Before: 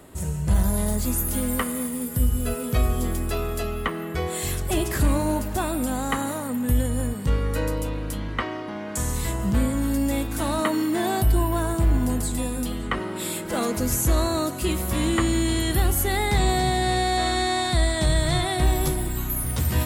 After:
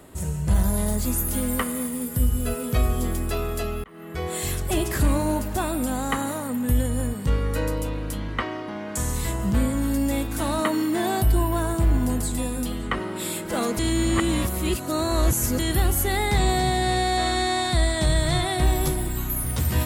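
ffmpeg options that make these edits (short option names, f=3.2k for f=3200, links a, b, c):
-filter_complex "[0:a]asplit=4[a][b][c][d];[a]atrim=end=3.84,asetpts=PTS-STARTPTS,afade=t=out:st=3.836:d=0.004:c=hsin[e];[b]atrim=start=3.84:end=13.792,asetpts=PTS-STARTPTS,afade=t=in:d=0.5[f];[c]atrim=start=13.788:end=15.592,asetpts=PTS-STARTPTS,areverse[g];[d]atrim=start=15.588[h];[e][f]concat=n=2:v=0:a=1[i];[i][g]acrossfade=d=0.004:c1=hsin:c2=hsin[j];[j][h]acrossfade=d=0.004:c1=hsin:c2=hsin"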